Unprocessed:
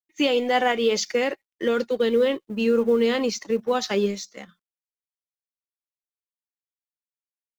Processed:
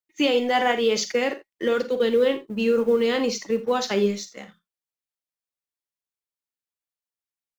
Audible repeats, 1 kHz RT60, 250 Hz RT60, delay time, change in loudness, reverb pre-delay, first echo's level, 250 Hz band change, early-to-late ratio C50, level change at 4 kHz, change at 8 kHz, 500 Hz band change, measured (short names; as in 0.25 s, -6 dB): 2, none, none, 41 ms, 0.0 dB, none, -14.5 dB, -0.5 dB, none, +0.5 dB, n/a, +0.5 dB